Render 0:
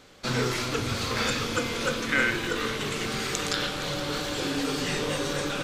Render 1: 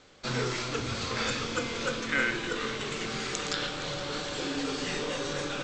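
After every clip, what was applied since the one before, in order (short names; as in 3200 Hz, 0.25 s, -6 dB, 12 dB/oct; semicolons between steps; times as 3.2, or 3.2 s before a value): steep low-pass 8000 Hz 96 dB/oct; notches 50/100/150/200/250/300 Hz; gain -3.5 dB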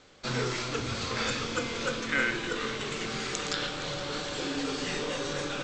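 nothing audible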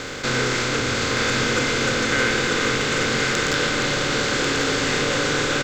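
per-bin compression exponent 0.4; sample leveller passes 1; echo 1.092 s -5.5 dB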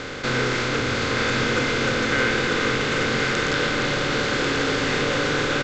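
air absorption 98 m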